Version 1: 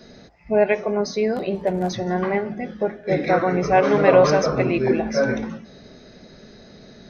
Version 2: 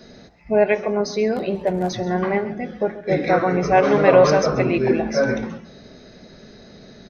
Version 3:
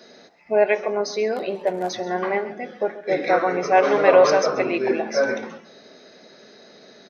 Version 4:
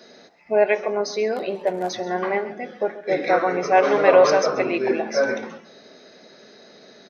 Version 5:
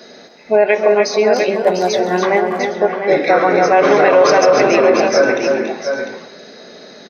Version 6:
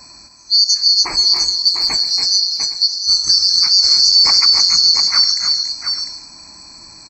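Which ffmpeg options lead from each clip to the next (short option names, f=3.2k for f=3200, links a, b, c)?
-filter_complex "[0:a]asplit=2[a][b];[b]adelay=134.1,volume=-16dB,highshelf=f=4k:g=-3.02[c];[a][c]amix=inputs=2:normalize=0,volume=1dB"
-af "highpass=370"
-af anull
-filter_complex "[0:a]asplit=2[a][b];[b]aecho=0:1:280|302|699|810:0.316|0.355|0.398|0.106[c];[a][c]amix=inputs=2:normalize=0,alimiter=level_in=9.5dB:limit=-1dB:release=50:level=0:latency=1,volume=-1dB"
-af "afftfilt=real='real(if(lt(b,736),b+184*(1-2*mod(floor(b/184),2)),b),0)':imag='imag(if(lt(b,736),b+184*(1-2*mod(floor(b/184),2)),b),0)':win_size=2048:overlap=0.75,volume=-1dB"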